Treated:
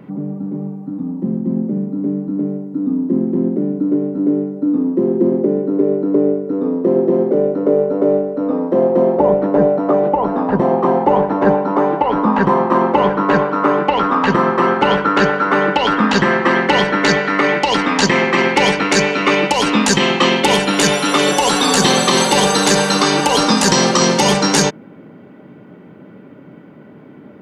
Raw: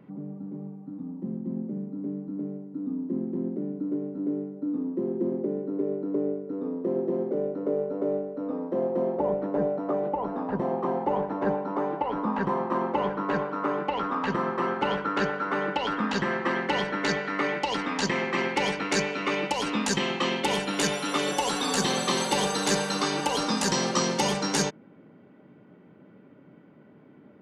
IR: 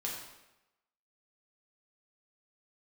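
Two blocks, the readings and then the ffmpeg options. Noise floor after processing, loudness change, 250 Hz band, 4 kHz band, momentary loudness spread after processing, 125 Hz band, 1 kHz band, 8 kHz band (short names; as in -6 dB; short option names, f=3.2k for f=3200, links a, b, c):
-40 dBFS, +13.0 dB, +13.5 dB, +13.0 dB, 7 LU, +13.0 dB, +13.0 dB, +12.5 dB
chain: -af "alimiter=level_in=14.5dB:limit=-1dB:release=50:level=0:latency=1,volume=-1dB"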